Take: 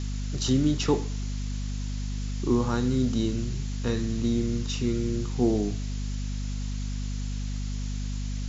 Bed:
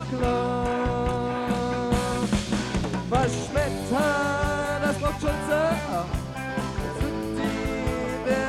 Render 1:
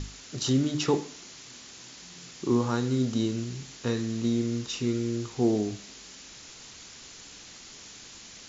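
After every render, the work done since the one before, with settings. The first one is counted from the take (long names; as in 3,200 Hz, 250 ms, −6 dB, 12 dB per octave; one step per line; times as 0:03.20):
mains-hum notches 50/100/150/200/250/300 Hz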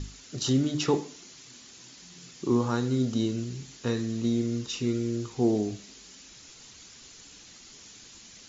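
broadband denoise 6 dB, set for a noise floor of −48 dBFS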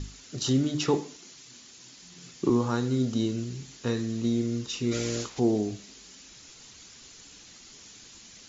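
0:01.17–0:02.50: multiband upward and downward expander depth 70%
0:04.91–0:05.38: ceiling on every frequency bin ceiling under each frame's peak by 19 dB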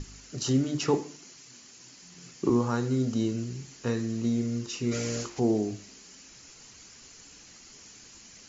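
parametric band 3,600 Hz −8.5 dB 0.34 octaves
mains-hum notches 50/100/150/200/250/300/350 Hz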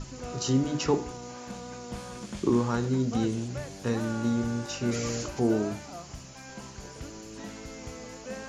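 mix in bed −15 dB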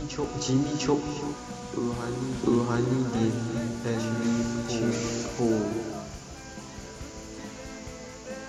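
backwards echo 700 ms −6 dB
reverb whose tail is shaped and stops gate 400 ms rising, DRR 7.5 dB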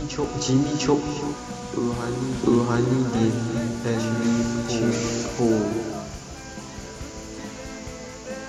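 level +4.5 dB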